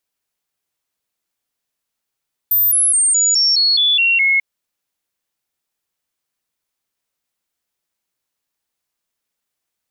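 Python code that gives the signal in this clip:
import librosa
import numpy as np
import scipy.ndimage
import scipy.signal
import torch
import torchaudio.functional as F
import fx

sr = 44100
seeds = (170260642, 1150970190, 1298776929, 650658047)

y = fx.stepped_sweep(sr, from_hz=13800.0, direction='down', per_octave=3, tones=9, dwell_s=0.21, gap_s=0.0, level_db=-11.0)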